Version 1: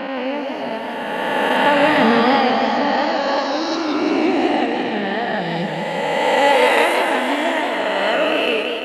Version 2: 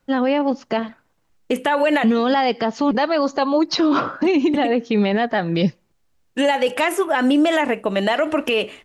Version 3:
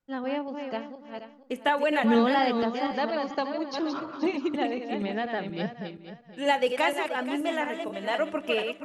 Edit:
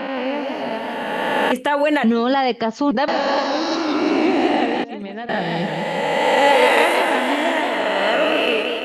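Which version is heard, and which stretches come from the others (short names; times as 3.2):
1
1.52–3.08 from 2
4.84–5.29 from 3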